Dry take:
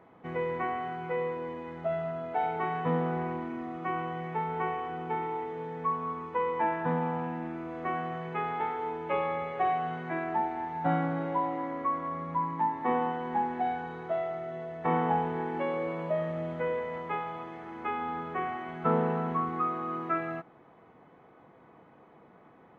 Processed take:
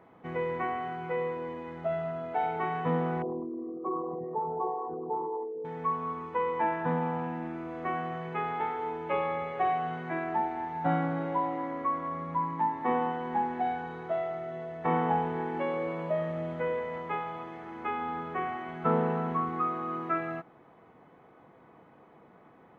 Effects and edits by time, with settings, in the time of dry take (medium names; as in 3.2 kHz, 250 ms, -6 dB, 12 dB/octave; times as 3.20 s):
3.22–5.65 s: resonances exaggerated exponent 3